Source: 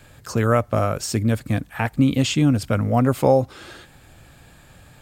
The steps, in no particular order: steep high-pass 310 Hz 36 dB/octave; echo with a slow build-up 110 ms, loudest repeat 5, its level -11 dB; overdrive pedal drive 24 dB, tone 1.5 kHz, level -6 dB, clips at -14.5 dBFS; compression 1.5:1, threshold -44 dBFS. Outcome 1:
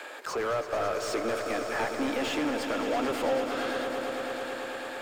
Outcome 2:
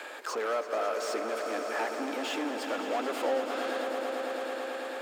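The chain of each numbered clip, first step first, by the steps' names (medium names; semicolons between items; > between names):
steep high-pass > overdrive pedal > compression > echo with a slow build-up; overdrive pedal > echo with a slow build-up > compression > steep high-pass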